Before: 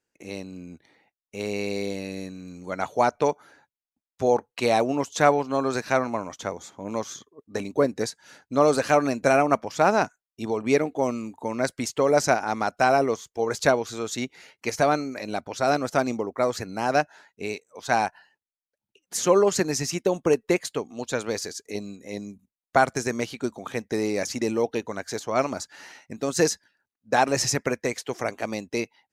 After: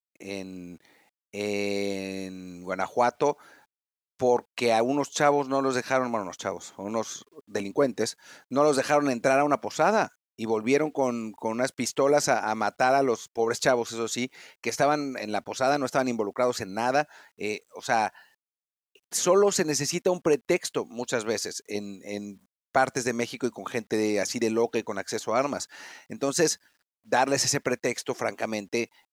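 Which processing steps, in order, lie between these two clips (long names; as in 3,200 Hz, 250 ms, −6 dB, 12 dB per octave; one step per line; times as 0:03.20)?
high-pass filter 150 Hz 6 dB per octave
in parallel at +2 dB: brickwall limiter −15.5 dBFS, peak gain reduction 11 dB
on the sum: bit-depth reduction 10 bits, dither none
level −6 dB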